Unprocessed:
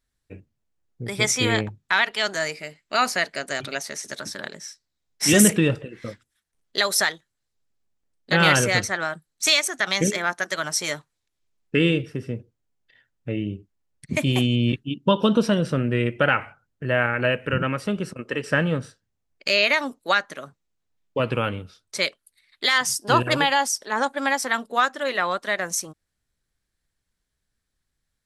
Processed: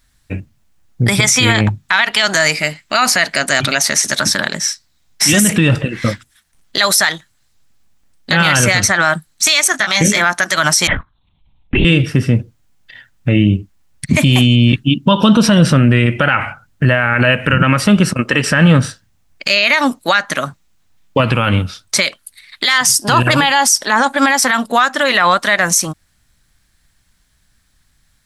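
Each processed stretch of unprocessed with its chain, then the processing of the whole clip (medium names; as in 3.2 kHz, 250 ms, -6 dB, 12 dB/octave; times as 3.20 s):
9.72–10.21 s: doubling 19 ms -5 dB + upward expansion, over -30 dBFS
10.87–11.85 s: touch-sensitive phaser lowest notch 270 Hz, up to 1.7 kHz, full sweep at -19.5 dBFS + compression 2.5:1, threshold -29 dBFS + LPC vocoder at 8 kHz whisper
whole clip: peaking EQ 430 Hz -10 dB 0.82 oct; compression, threshold -22 dBFS; loudness maximiser +21.5 dB; trim -1 dB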